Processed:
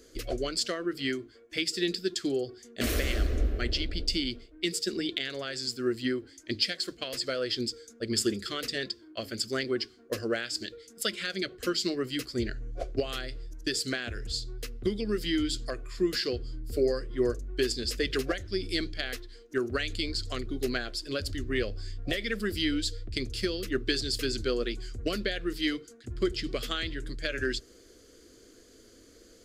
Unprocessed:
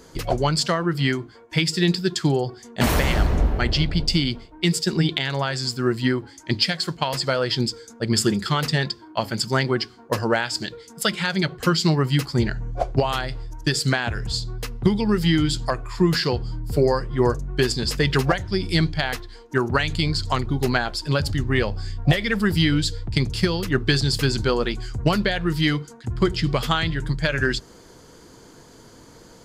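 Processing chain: static phaser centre 370 Hz, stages 4; trim -6 dB

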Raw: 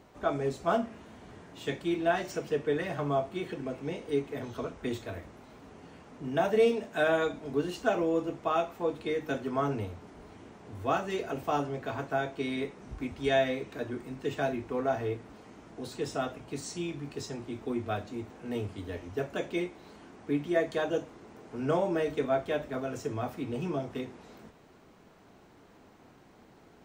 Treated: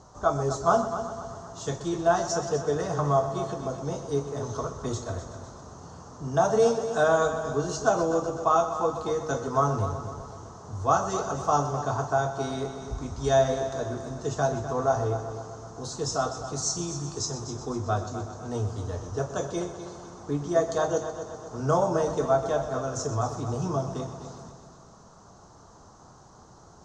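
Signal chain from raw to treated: FFT filter 130 Hz 0 dB, 270 Hz -11 dB, 1.2 kHz +1 dB, 2.3 kHz -23 dB, 6.4 kHz +9 dB, 13 kHz -28 dB; multi-head delay 126 ms, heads first and second, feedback 54%, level -13 dB; trim +9 dB

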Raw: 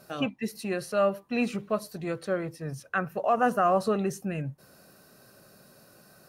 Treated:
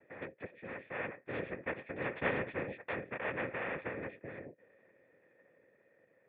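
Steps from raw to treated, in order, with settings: Doppler pass-by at 2.37 s, 10 m/s, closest 1.8 m; dynamic bell 210 Hz, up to +6 dB, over -51 dBFS, Q 1; noise-vocoded speech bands 3; cascade formant filter e; spectrum-flattening compressor 2:1; trim +7.5 dB

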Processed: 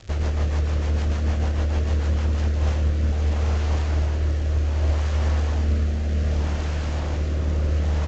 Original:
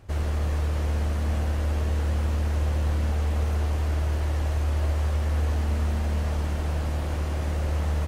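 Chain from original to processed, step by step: crackle 130 per s -31 dBFS; rotary cabinet horn 6.7 Hz, later 0.65 Hz, at 2.04 s; trim +4.5 dB; Vorbis 64 kbps 16 kHz

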